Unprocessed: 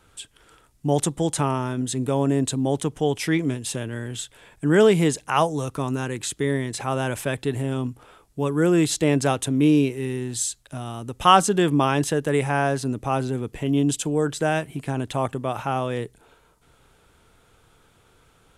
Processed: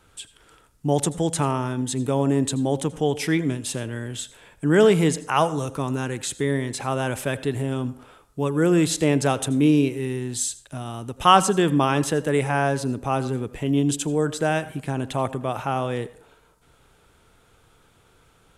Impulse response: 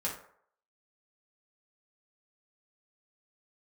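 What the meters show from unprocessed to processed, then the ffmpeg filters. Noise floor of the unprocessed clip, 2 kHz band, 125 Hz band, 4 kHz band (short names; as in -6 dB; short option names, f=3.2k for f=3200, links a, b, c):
-59 dBFS, 0.0 dB, 0.0 dB, 0.0 dB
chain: -filter_complex "[0:a]asplit=2[a][b];[1:a]atrim=start_sample=2205,adelay=80[c];[b][c]afir=irnorm=-1:irlink=0,volume=-20dB[d];[a][d]amix=inputs=2:normalize=0"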